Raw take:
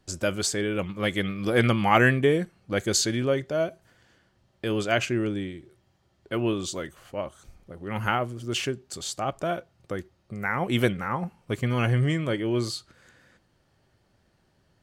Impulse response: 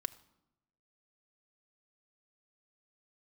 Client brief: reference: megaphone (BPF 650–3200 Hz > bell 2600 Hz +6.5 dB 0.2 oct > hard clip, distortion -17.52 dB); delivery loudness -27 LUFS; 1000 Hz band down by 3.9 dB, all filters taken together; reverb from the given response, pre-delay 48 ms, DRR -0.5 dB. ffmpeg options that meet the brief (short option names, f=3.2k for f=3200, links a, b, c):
-filter_complex "[0:a]equalizer=f=1k:t=o:g=-4,asplit=2[a][b];[1:a]atrim=start_sample=2205,adelay=48[c];[b][c]afir=irnorm=-1:irlink=0,volume=1dB[d];[a][d]amix=inputs=2:normalize=0,highpass=650,lowpass=3.2k,equalizer=f=2.6k:t=o:w=0.2:g=6.5,asoftclip=type=hard:threshold=-15.5dB,volume=2.5dB"